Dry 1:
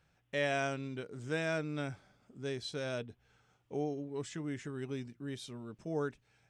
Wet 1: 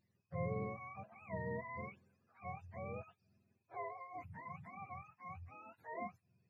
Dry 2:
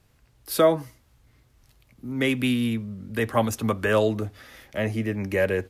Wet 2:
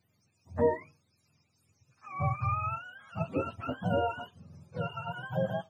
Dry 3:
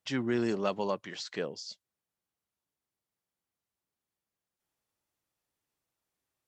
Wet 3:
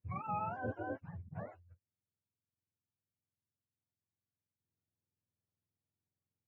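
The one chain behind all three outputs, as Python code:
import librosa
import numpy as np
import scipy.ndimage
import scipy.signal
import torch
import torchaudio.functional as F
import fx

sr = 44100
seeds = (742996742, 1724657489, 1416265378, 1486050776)

y = fx.octave_mirror(x, sr, pivot_hz=550.0)
y = fx.peak_eq(y, sr, hz=3100.0, db=-11.0, octaves=0.34)
y = F.gain(torch.from_numpy(y), -7.5).numpy()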